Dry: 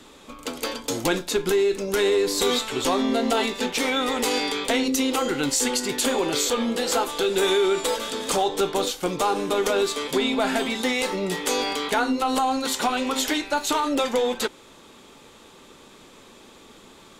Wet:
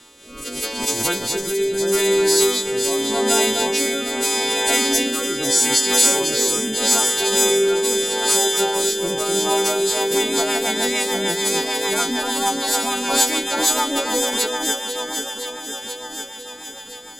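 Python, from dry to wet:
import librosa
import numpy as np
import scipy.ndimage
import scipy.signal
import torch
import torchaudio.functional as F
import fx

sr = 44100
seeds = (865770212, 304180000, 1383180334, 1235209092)

p1 = fx.freq_snap(x, sr, grid_st=2)
p2 = p1 + fx.echo_alternate(p1, sr, ms=250, hz=2200.0, feedback_pct=82, wet_db=-4, dry=0)
p3 = fx.rotary_switch(p2, sr, hz=0.8, then_hz=6.7, switch_at_s=9.47)
y = fx.pre_swell(p3, sr, db_per_s=69.0)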